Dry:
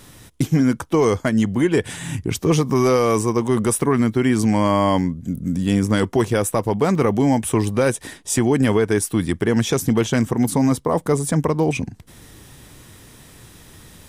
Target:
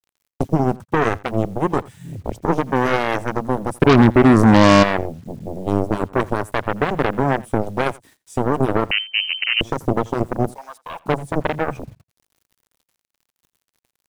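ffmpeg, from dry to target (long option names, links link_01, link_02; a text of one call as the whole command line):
ffmpeg -i in.wav -filter_complex "[0:a]afwtdn=0.0891,asplit=3[link_01][link_02][link_03];[link_01]afade=type=out:start_time=3.81:duration=0.02[link_04];[link_02]acontrast=87,afade=type=in:start_time=3.81:duration=0.02,afade=type=out:start_time=4.82:duration=0.02[link_05];[link_03]afade=type=in:start_time=4.82:duration=0.02[link_06];[link_04][link_05][link_06]amix=inputs=3:normalize=0,asettb=1/sr,asplit=3[link_07][link_08][link_09];[link_07]atrim=end=10.514[link_10];[link_08]atrim=start=10.51:end=11.01,asetpts=PTS-STARTPTS,afade=type=in:duration=0.004:curve=qsin,afade=type=out:start_time=0.496:duration=0.004:curve=qsin,highpass=frequency=800:width=0.5412,highpass=frequency=800:width=1.3066[link_11];[link_09]atrim=start=11.006[link_12];[link_10][link_11]acrossfade=duration=0.004:curve1=hsin:curve2=qsin[link_13];[link_13][link_12]acrossfade=duration=0.004:curve1=qsin:curve2=hsin,aeval=exprs='0.668*(cos(1*acos(clip(val(0)/0.668,-1,1)))-cos(1*PI/2))+0.0237*(cos(6*acos(clip(val(0)/0.668,-1,1)))-cos(6*PI/2))+0.168*(cos(7*acos(clip(val(0)/0.668,-1,1)))-cos(7*PI/2))':channel_layout=same,acrusher=bits=8:mix=0:aa=0.000001,aecho=1:1:85:0.075,asettb=1/sr,asplit=3[link_14][link_15][link_16];[link_14]atrim=end=8.914[link_17];[link_15]atrim=start=8.91:end=9.61,asetpts=PTS-STARTPTS,afade=type=in:duration=0.004:curve=qsin,afade=type=out:start_time=0.696:duration=0.004:curve=qsin,lowpass=frequency=2600:width_type=q:width=0.5098,lowpass=frequency=2600:width_type=q:width=0.6013,lowpass=frequency=2600:width_type=q:width=0.9,lowpass=frequency=2600:width_type=q:width=2.563,afreqshift=-3100[link_18];[link_16]atrim=start=9.606[link_19];[link_17][link_18]acrossfade=duration=0.004:curve1=hsin:curve2=qsin[link_20];[link_20][link_19]acrossfade=duration=0.004:curve1=qsin:curve2=hsin" out.wav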